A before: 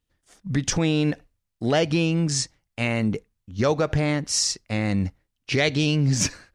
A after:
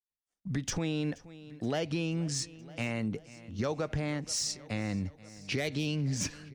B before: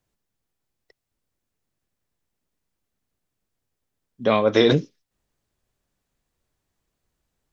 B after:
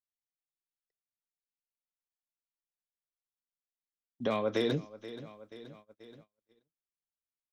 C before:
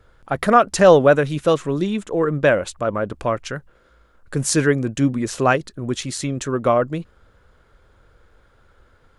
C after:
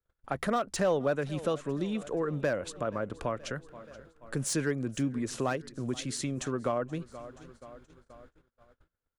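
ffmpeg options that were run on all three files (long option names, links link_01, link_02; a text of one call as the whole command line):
ffmpeg -i in.wav -filter_complex "[0:a]acrossover=split=110|880[link_01][link_02][link_03];[link_03]asoftclip=type=hard:threshold=-17.5dB[link_04];[link_01][link_02][link_04]amix=inputs=3:normalize=0,equalizer=frequency=250:width_type=o:width=0.33:gain=2,aecho=1:1:477|954|1431|1908:0.0708|0.0425|0.0255|0.0153,agate=range=-31dB:threshold=-48dB:ratio=16:detection=peak,acompressor=threshold=-28dB:ratio=2,volume=-5dB" out.wav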